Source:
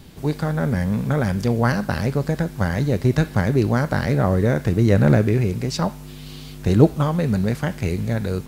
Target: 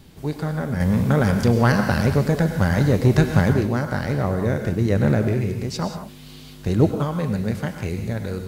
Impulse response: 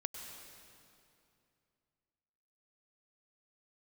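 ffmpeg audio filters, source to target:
-filter_complex "[0:a]asettb=1/sr,asplit=3[a][b][c];[a]atrim=end=0.804[d];[b]atrim=start=0.8:end=3.53,asetpts=PTS-STARTPTS,afade=t=in:d=0.004:c=qsin,afade=t=out:st=2.726:d=0.004:c=qsin,acontrast=75[e];[c]atrim=start=3.526[f];[d][e]acrossfade=d=0.004:c1=hsin:c2=qsin[g];[g][f]acrossfade=d=0.004:c1=qsin:c2=hsin[h];[1:a]atrim=start_sample=2205,afade=t=out:st=0.25:d=0.01,atrim=end_sample=11466[i];[h][i]afir=irnorm=-1:irlink=0,volume=-1.5dB"

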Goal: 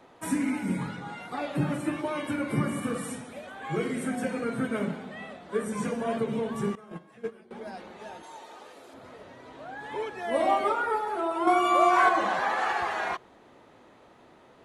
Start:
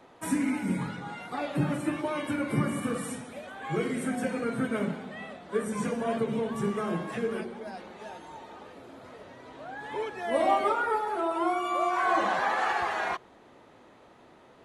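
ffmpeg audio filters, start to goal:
-filter_complex "[0:a]asettb=1/sr,asplit=3[a][b][c];[a]atrim=end=6.754[d];[b]atrim=start=6.75:end=7.51,asetpts=PTS-STARTPTS,afade=t=in:d=0.004:c=qsin,afade=t=out:st=0.756:d=0.004:c=qsin,agate=range=-19dB:threshold=-27dB:ratio=16:detection=peak[e];[c]atrim=start=7.506[f];[d][e]acrossfade=d=0.004:c1=hsin:c2=qsin[g];[g][f]acrossfade=d=0.004:c1=qsin:c2=hsin,asettb=1/sr,asplit=3[h][i][j];[h]atrim=end=8.234[k];[i]atrim=start=8.23:end=8.94,asetpts=PTS-STARTPTS,afade=t=in:d=0.004:c=qsin,afade=t=out:st=0.706:d=0.004:c=qsin,bass=f=250:g=-14,treble=f=4k:g=8[l];[j]atrim=start=8.936[m];[k][l]acrossfade=d=0.004:c1=hsin:c2=qsin[n];[n][m]acrossfade=d=0.004:c1=qsin:c2=hsin,asettb=1/sr,asplit=3[o][p][q];[o]atrim=end=11.474[r];[p]atrim=start=11.47:end=12.09,asetpts=PTS-STARTPTS,afade=t=in:d=0.004:c=qsin,afade=t=out:st=0.616:d=0.004:c=qsin,acontrast=71[s];[q]atrim=start=12.086[t];[r][s]acrossfade=d=0.004:c1=hsin:c2=qsin[u];[u][t]acrossfade=d=0.004:c1=qsin:c2=hsin"

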